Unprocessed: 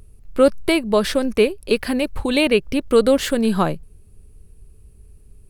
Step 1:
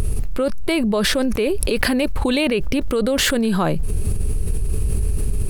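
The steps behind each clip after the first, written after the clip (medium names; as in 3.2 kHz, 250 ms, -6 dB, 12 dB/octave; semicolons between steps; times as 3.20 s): level flattener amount 100%; trim -8.5 dB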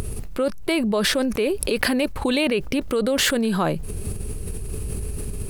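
bass shelf 87 Hz -11 dB; trim -1.5 dB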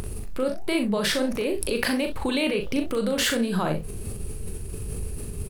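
flange 1.4 Hz, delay 5.3 ms, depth 8 ms, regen +85%; early reflections 39 ms -6 dB, 64 ms -12.5 dB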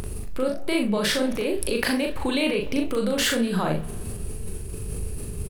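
doubling 39 ms -13.5 dB; on a send at -18 dB: reverberation RT60 2.3 s, pre-delay 57 ms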